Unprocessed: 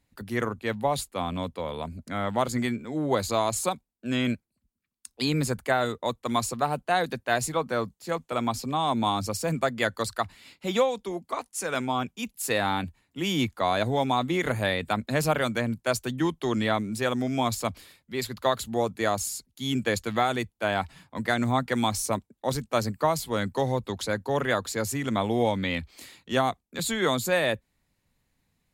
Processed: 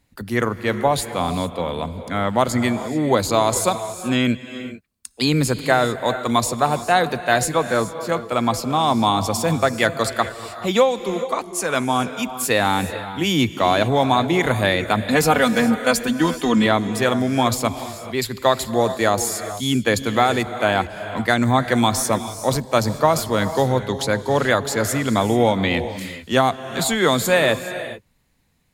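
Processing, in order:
0:15.04–0:16.66: comb filter 4.1 ms, depth 75%
reverb whose tail is shaped and stops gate 460 ms rising, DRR 10.5 dB
level +7.5 dB

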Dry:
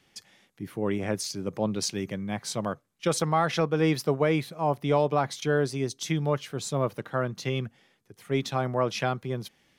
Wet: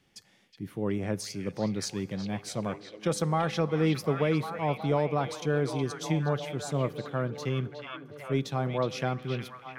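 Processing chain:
low-shelf EQ 380 Hz +6 dB
echo through a band-pass that steps 367 ms, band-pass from 2,800 Hz, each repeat −0.7 octaves, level −2 dB
on a send at −19.5 dB: convolution reverb RT60 1.8 s, pre-delay 3 ms
on the sum: level −5.5 dB

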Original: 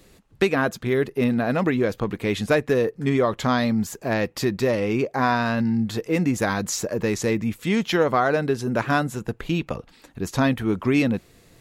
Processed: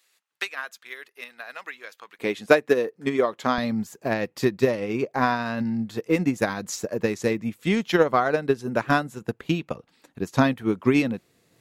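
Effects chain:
high-pass filter 1,400 Hz 12 dB per octave, from 0:02.19 260 Hz, from 0:03.58 120 Hz
transient designer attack +5 dB, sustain −2 dB
expander for the loud parts 1.5 to 1, over −28 dBFS
level +1 dB

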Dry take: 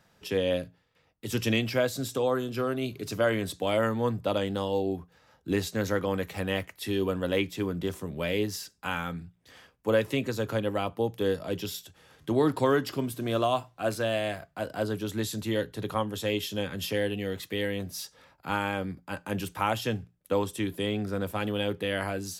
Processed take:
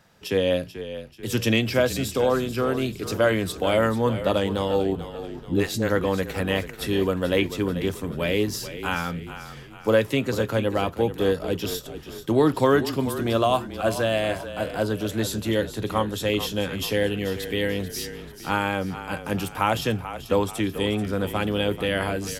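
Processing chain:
0:04.95–0:05.90: all-pass dispersion highs, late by 71 ms, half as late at 330 Hz
echo with shifted repeats 437 ms, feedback 47%, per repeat −32 Hz, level −12 dB
level +5 dB

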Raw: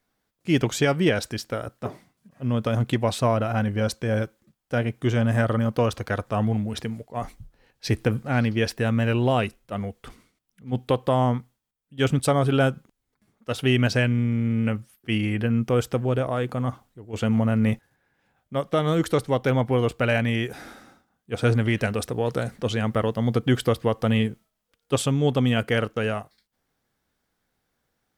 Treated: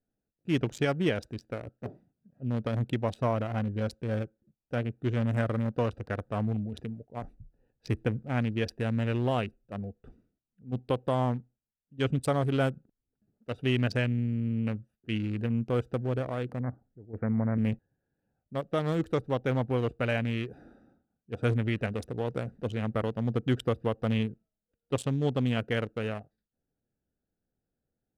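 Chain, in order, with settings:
adaptive Wiener filter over 41 samples
0:16.60–0:17.58: Butterworth low-pass 2,200 Hz 96 dB per octave
level −6 dB

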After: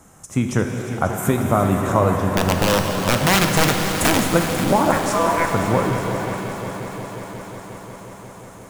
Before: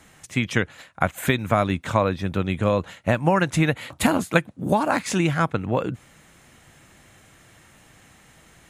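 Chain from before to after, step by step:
flat-topped bell 2,800 Hz −13 dB
in parallel at −1 dB: brickwall limiter −14 dBFS, peak gain reduction 9.5 dB
0:02.37–0:04.25: on the sum: wrap-around overflow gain 9.5 dB
0:04.92–0:05.52: ring modulation 830 Hz
on a send: echo machine with several playback heads 179 ms, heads second and third, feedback 72%, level −13 dB
on the sum: reverb with rising layers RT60 3 s, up +7 semitones, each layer −8 dB, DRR 4 dB
level −1 dB

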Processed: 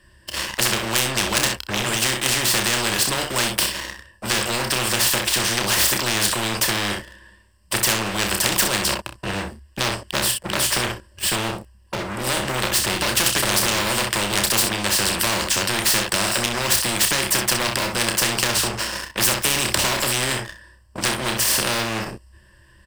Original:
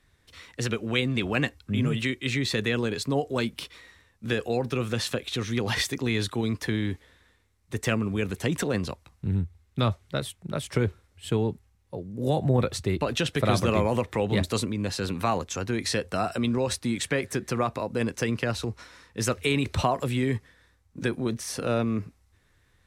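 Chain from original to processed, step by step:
EQ curve with evenly spaced ripples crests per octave 1.3, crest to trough 16 dB
leveller curve on the samples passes 3
on a send: ambience of single reflections 30 ms −7 dB, 63 ms −11.5 dB
on the sum: every bin compressed towards the loudest bin 4 to 1
level +3 dB

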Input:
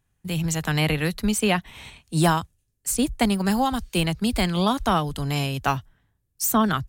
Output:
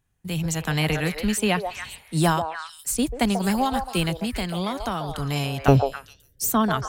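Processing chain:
0:04.13–0:05.09: downward compressor 2.5 to 1, threshold −25 dBFS, peak gain reduction 7 dB
0:05.68–0:06.50: low shelf with overshoot 720 Hz +13 dB, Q 3
echo through a band-pass that steps 139 ms, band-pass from 640 Hz, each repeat 1.4 octaves, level −2.5 dB
level −1 dB

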